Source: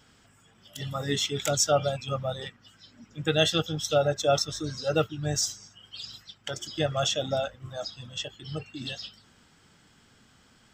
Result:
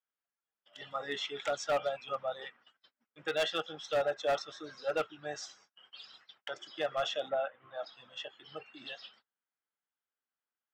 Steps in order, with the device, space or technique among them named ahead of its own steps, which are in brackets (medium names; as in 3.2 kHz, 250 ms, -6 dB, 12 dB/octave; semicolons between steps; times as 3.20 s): walkie-talkie (band-pass 590–2400 Hz; hard clipper -23.5 dBFS, distortion -12 dB; gate -59 dBFS, range -32 dB); 7.28–7.85 s: low-pass 2.3 kHz -> 4.3 kHz 24 dB/octave; trim -1.5 dB